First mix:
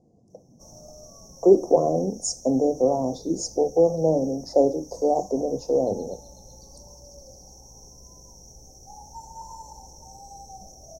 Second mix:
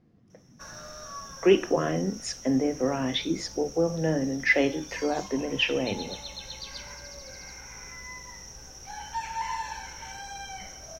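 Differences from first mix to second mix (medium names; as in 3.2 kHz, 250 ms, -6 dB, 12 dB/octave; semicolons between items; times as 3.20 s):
speech: add graphic EQ 500/1000/4000/8000 Hz -7/-9/-11/-9 dB; master: remove elliptic band-stop 750–6300 Hz, stop band 50 dB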